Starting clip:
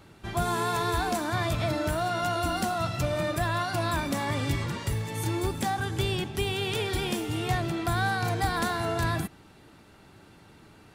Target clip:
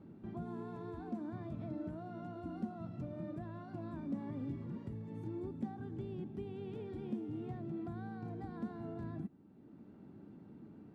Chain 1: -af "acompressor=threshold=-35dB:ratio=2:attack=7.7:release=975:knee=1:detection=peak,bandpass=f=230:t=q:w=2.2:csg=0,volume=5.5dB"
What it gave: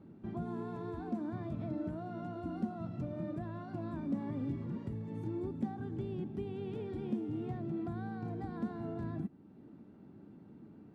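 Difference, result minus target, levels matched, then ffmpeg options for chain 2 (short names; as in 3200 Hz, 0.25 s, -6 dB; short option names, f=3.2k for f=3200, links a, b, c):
compressor: peak gain reduction -4 dB
-af "acompressor=threshold=-43dB:ratio=2:attack=7.7:release=975:knee=1:detection=peak,bandpass=f=230:t=q:w=2.2:csg=0,volume=5.5dB"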